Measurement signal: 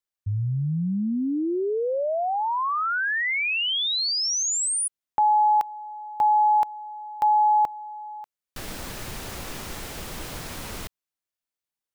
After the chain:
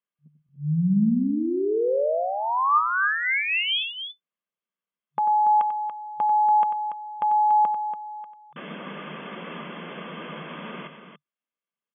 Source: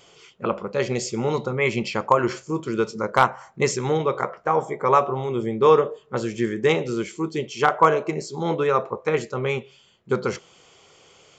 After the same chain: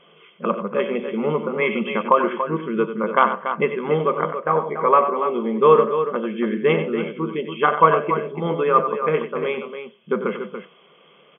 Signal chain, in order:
comb filter 1.9 ms, depth 36%
hollow resonant body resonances 210/1,200 Hz, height 9 dB, ringing for 35 ms
on a send: loudspeakers that aren't time-aligned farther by 32 metres −10 dB, 98 metres −9 dB
on the sum: brick-wall band-pass 150–3,500 Hz
level −1 dB

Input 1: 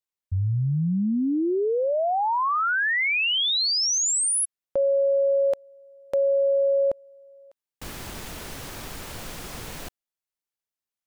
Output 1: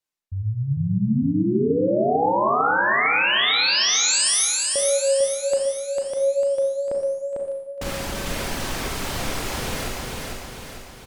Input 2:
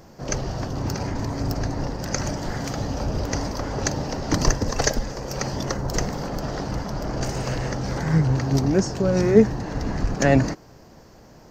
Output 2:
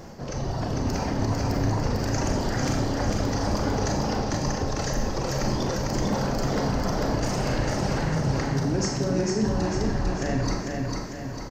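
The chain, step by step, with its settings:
reverb reduction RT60 1.2 s
high-shelf EQ 12,000 Hz −9 dB
reversed playback
downward compressor 6 to 1, threshold −33 dBFS
reversed playback
brickwall limiter −29.5 dBFS
automatic gain control gain up to 4 dB
tape wow and flutter 24 cents
on a send: repeating echo 449 ms, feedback 51%, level −3 dB
on the sum: four-comb reverb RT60 0.85 s, combs from 29 ms, DRR 2 dB
level +5.5 dB

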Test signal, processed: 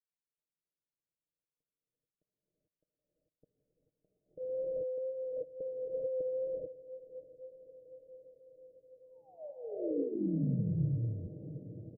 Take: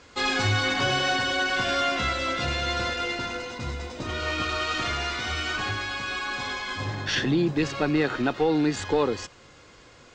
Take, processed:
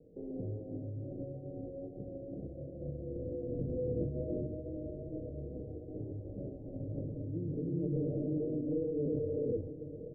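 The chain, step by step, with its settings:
rippled gain that drifts along the octave scale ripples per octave 1.1, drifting −0.53 Hz, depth 6 dB
brickwall limiter −20.5 dBFS
reverb whose tail is shaped and stops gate 470 ms rising, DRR −6 dB
compressor whose output falls as the input rises −27 dBFS, ratio −1
comb filter 6.5 ms, depth 54%
pitch vibrato 2.2 Hz 21 cents
Butterworth low-pass 600 Hz 72 dB per octave
parametric band 160 Hz +2.5 dB
feedback delay with all-pass diffusion 605 ms, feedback 71%, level −14.5 dB
level −8.5 dB

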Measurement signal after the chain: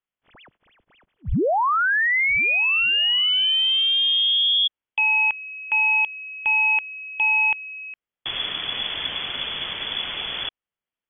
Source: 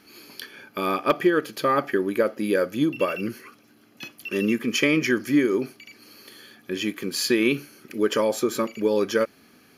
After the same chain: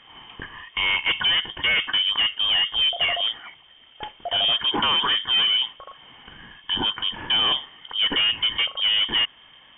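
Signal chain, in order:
hard clipping −23 dBFS
voice inversion scrambler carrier 3,400 Hz
level +5 dB

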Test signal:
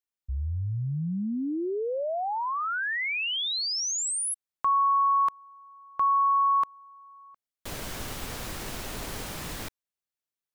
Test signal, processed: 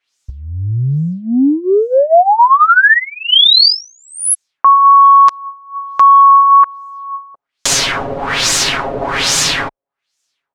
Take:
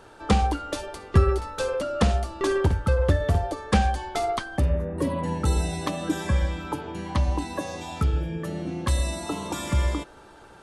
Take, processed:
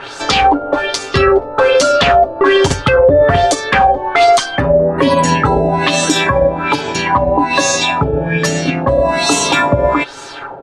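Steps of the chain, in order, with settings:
spectral tilt +2.5 dB per octave
comb filter 7.3 ms, depth 66%
transient designer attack +5 dB, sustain −3 dB
auto-filter low-pass sine 1.2 Hz 570–7,000 Hz
boost into a limiter +19 dB
level −1 dB

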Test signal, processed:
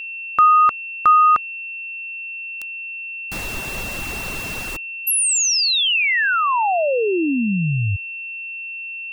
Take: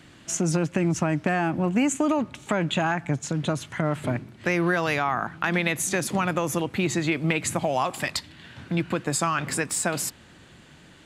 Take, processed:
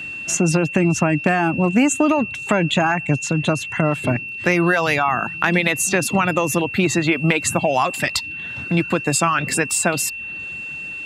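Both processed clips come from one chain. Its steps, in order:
reverb reduction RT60 0.53 s
steady tone 2,700 Hz −35 dBFS
level +7 dB

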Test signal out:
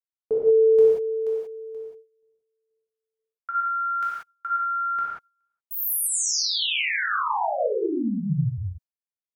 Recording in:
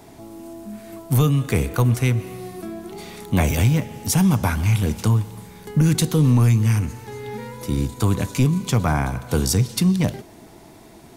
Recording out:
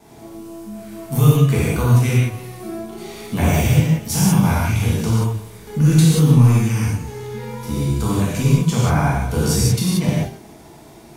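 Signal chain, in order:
noise gate with hold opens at −45 dBFS
reverb whose tail is shaped and stops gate 210 ms flat, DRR −7.5 dB
level −5.5 dB

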